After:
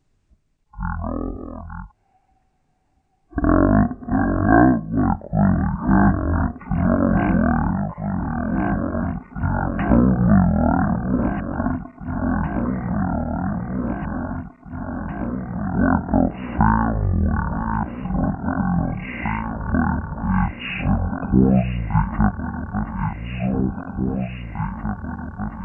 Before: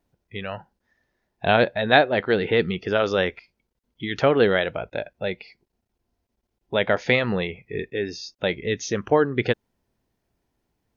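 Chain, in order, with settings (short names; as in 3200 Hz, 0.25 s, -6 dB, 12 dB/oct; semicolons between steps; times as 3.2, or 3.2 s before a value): regenerating reverse delay 0.566 s, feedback 76%, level -8.5 dB; low shelf 240 Hz +6 dB; in parallel at 0 dB: compressor, threshold -27 dBFS, peak gain reduction 16 dB; on the sum: speed mistake 78 rpm record played at 33 rpm; gain -1 dB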